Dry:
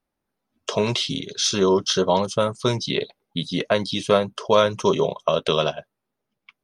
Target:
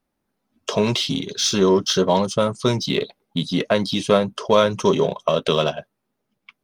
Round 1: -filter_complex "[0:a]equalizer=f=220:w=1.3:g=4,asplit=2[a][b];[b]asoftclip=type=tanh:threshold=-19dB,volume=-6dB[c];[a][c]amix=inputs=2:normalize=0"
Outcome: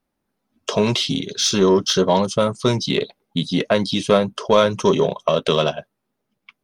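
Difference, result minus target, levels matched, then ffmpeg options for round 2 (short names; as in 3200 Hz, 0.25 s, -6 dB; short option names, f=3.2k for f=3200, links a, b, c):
soft clip: distortion -5 dB
-filter_complex "[0:a]equalizer=f=220:w=1.3:g=4,asplit=2[a][b];[b]asoftclip=type=tanh:threshold=-29.5dB,volume=-6dB[c];[a][c]amix=inputs=2:normalize=0"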